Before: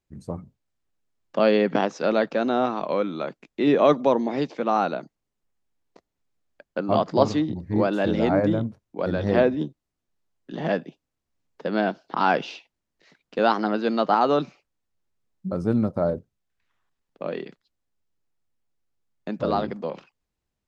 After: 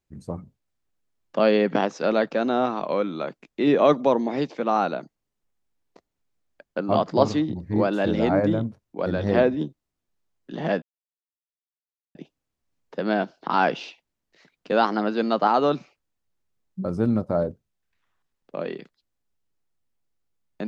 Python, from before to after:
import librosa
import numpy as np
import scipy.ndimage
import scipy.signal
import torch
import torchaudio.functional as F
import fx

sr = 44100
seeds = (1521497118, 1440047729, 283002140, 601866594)

y = fx.edit(x, sr, fx.insert_silence(at_s=10.82, length_s=1.33), tone=tone)